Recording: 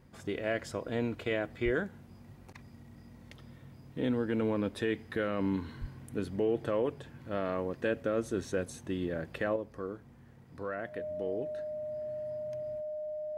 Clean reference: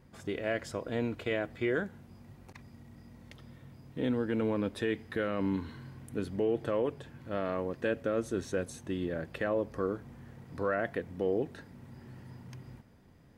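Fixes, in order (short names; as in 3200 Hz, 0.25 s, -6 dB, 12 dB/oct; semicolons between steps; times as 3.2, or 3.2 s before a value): notch 610 Hz, Q 30; 1.64–1.76 HPF 140 Hz 24 dB/oct; 5.8–5.92 HPF 140 Hz 24 dB/oct; gain 0 dB, from 9.56 s +6.5 dB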